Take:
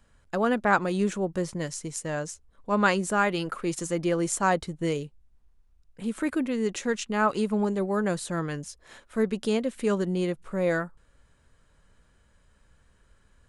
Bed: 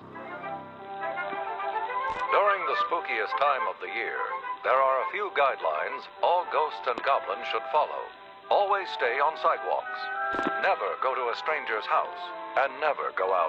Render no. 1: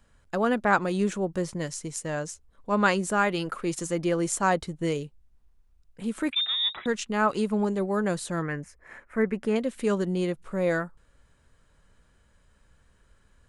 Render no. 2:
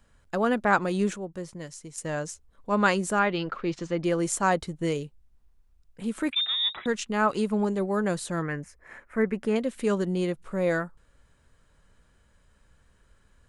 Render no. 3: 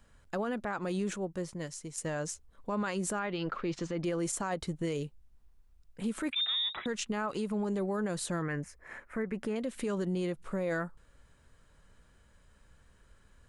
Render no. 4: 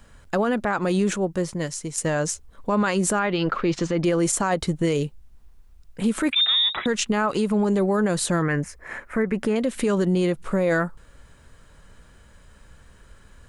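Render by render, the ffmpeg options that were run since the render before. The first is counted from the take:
-filter_complex "[0:a]asettb=1/sr,asplit=3[s0][s1][s2];[s0]atrim=end=6.324[s3];[s1]atrim=start=6.32:end=6.86,asetpts=PTS-STARTPTS,afade=t=in:d=0.004:c=qsin,afade=t=out:st=0.536:d=0.004:c=qsin,lowpass=f=3300:t=q:w=0.5098,lowpass=f=3300:t=q:w=0.6013,lowpass=f=3300:t=q:w=0.9,lowpass=f=3300:t=q:w=2.563,afreqshift=-3900[s4];[s2]atrim=start=6.856[s5];[s3][s4]acrossfade=d=0.004:c1=hsin:c2=qsin[s6];[s6][s5]acrossfade=d=0.004:c1=qsin:c2=hsin,asettb=1/sr,asplit=3[s7][s8][s9];[s7]atrim=end=8.424[s10];[s8]atrim=start=8.42:end=9.56,asetpts=PTS-STARTPTS,afade=t=in:d=0.004:c=qsin,afade=t=out:st=1.136:d=0.004:c=qsin,highshelf=f=2700:t=q:w=3:g=-9.5[s11];[s9]atrim=start=9.556[s12];[s10][s11]acrossfade=d=0.004:c1=hsin:c2=qsin[s13];[s13][s12]acrossfade=d=0.004:c1=qsin:c2=hsin"
-filter_complex "[0:a]asettb=1/sr,asplit=3[s0][s1][s2];[s0]atrim=end=3.194[s3];[s1]atrim=start=3.19:end=4.04,asetpts=PTS-STARTPTS,afade=t=in:d=0.004:c=qsin,afade=t=out:st=0.846:d=0.004:c=qsin,lowpass=f=4700:w=0.5412,lowpass=f=4700:w=1.3066[s4];[s2]atrim=start=4.036[s5];[s3][s4]acrossfade=d=0.004:c1=hsin:c2=qsin[s6];[s6][s5]acrossfade=d=0.004:c1=qsin:c2=hsin,asplit=3[s7][s8][s9];[s7]atrim=end=1.162[s10];[s8]atrim=start=1.158:end=1.982,asetpts=PTS-STARTPTS,volume=0.422[s11];[s9]atrim=start=1.978[s12];[s10][s11]acrossfade=d=0.004:c1=hsin:c2=hsin[s13];[s13][s12]acrossfade=d=0.004:c1=hsin:c2=hsin"
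-af "acompressor=threshold=0.0562:ratio=6,alimiter=level_in=1.12:limit=0.0631:level=0:latency=1:release=51,volume=0.891"
-af "volume=3.76"

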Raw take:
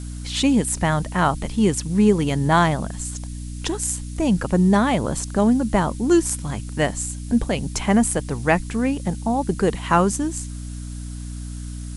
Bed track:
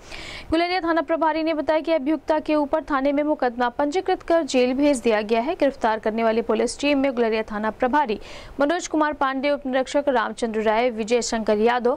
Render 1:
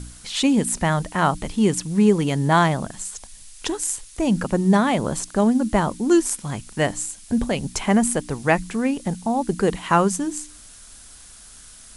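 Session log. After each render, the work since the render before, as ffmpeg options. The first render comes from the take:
-af "bandreject=f=60:t=h:w=4,bandreject=f=120:t=h:w=4,bandreject=f=180:t=h:w=4,bandreject=f=240:t=h:w=4,bandreject=f=300:t=h:w=4"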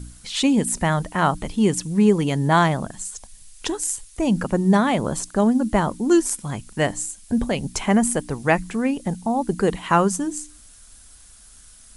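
-af "afftdn=nr=6:nf=-45"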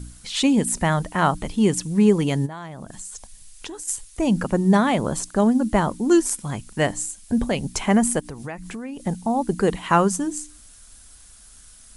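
-filter_complex "[0:a]asplit=3[s0][s1][s2];[s0]afade=t=out:st=2.45:d=0.02[s3];[s1]acompressor=threshold=0.0282:ratio=12:attack=3.2:release=140:knee=1:detection=peak,afade=t=in:st=2.45:d=0.02,afade=t=out:st=3.87:d=0.02[s4];[s2]afade=t=in:st=3.87:d=0.02[s5];[s3][s4][s5]amix=inputs=3:normalize=0,asplit=3[s6][s7][s8];[s6]afade=t=out:st=8.19:d=0.02[s9];[s7]acompressor=threshold=0.0316:ratio=5:attack=3.2:release=140:knee=1:detection=peak,afade=t=in:st=8.19:d=0.02,afade=t=out:st=9.05:d=0.02[s10];[s8]afade=t=in:st=9.05:d=0.02[s11];[s9][s10][s11]amix=inputs=3:normalize=0"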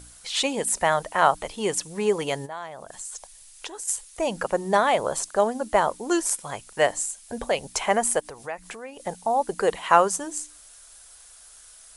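-af "lowshelf=f=360:t=q:w=1.5:g=-13"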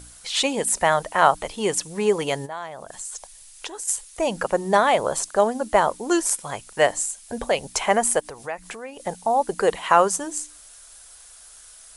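-af "volume=1.33,alimiter=limit=0.708:level=0:latency=1"

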